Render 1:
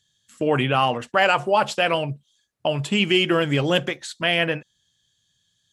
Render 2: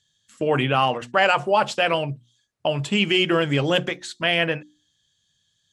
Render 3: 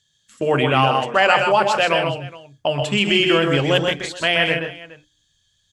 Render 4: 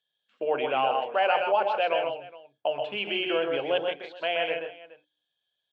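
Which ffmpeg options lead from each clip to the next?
-af "lowpass=9.6k,bandreject=f=60:t=h:w=6,bandreject=f=120:t=h:w=6,bandreject=f=180:t=h:w=6,bandreject=f=240:t=h:w=6,bandreject=f=300:t=h:w=6,bandreject=f=360:t=h:w=6"
-af "asubboost=boost=5.5:cutoff=71,bandreject=f=60:t=h:w=6,bandreject=f=120:t=h:w=6,bandreject=f=180:t=h:w=6,bandreject=f=240:t=h:w=6,bandreject=f=300:t=h:w=6,aecho=1:1:127|157|419:0.531|0.355|0.106,volume=2.5dB"
-af "highpass=470,equalizer=f=490:t=q:w=4:g=4,equalizer=f=710:t=q:w=4:g=4,equalizer=f=1.2k:t=q:w=4:g=-7,equalizer=f=1.9k:t=q:w=4:g=-10,lowpass=f=2.9k:w=0.5412,lowpass=f=2.9k:w=1.3066,volume=-7.5dB"

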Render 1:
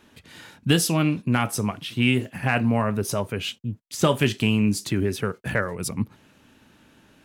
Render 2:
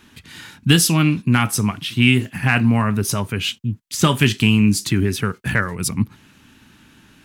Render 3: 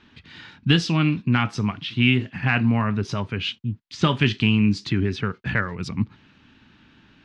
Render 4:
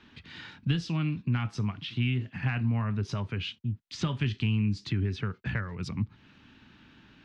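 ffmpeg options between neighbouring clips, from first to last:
-af "equalizer=f=560:t=o:w=1.1:g=-11.5,volume=7.5dB"
-af "lowpass=f=4.6k:w=0.5412,lowpass=f=4.6k:w=1.3066,volume=-4dB"
-filter_complex "[0:a]acrossover=split=130[a][b];[b]acompressor=threshold=-35dB:ratio=2.5[c];[a][c]amix=inputs=2:normalize=0,volume=-2dB"

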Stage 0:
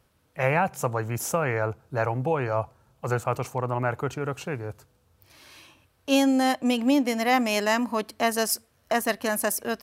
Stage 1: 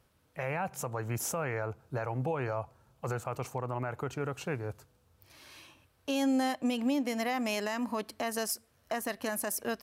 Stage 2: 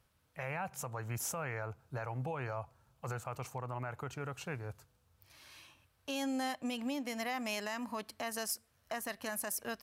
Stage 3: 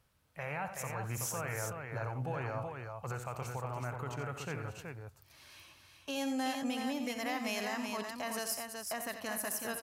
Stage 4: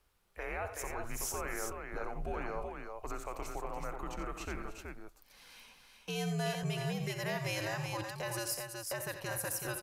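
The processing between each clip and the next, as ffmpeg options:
-af "alimiter=limit=-19.5dB:level=0:latency=1:release=160,volume=-3dB"
-af "equalizer=f=350:w=0.78:g=-6.5,volume=-3dB"
-af "aecho=1:1:64|88|301|375:0.251|0.316|0.168|0.562"
-af "afreqshift=-98"

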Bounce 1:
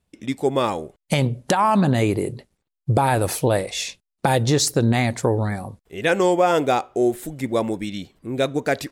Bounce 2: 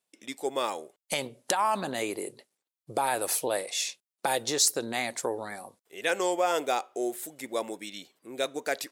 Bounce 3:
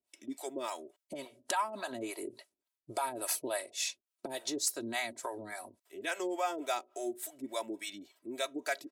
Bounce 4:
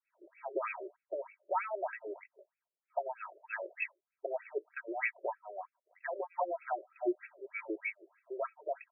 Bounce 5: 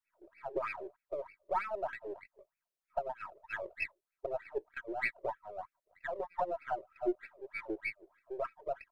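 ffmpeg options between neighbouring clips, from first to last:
-af "highpass=400,highshelf=f=4.2k:g=9,volume=-8dB"
-filter_complex "[0:a]acompressor=threshold=-39dB:ratio=1.5,aecho=1:1:3.1:0.76,acrossover=split=520[a][b];[a]aeval=exprs='val(0)*(1-1/2+1/2*cos(2*PI*3.5*n/s))':c=same[c];[b]aeval=exprs='val(0)*(1-1/2-1/2*cos(2*PI*3.5*n/s))':c=same[d];[c][d]amix=inputs=2:normalize=0,volume=1dB"
-af "alimiter=level_in=3.5dB:limit=-24dB:level=0:latency=1:release=13,volume=-3.5dB,lowpass=f=2.8k:t=q:w=3.1,afftfilt=real='re*between(b*sr/1024,430*pow(1900/430,0.5+0.5*sin(2*PI*3.2*pts/sr))/1.41,430*pow(1900/430,0.5+0.5*sin(2*PI*3.2*pts/sr))*1.41)':imag='im*between(b*sr/1024,430*pow(1900/430,0.5+0.5*sin(2*PI*3.2*pts/sr))/1.41,430*pow(1900/430,0.5+0.5*sin(2*PI*3.2*pts/sr))*1.41)':win_size=1024:overlap=0.75,volume=6.5dB"
-af "aeval=exprs='if(lt(val(0),0),0.708*val(0),val(0))':c=same,volume=1dB"

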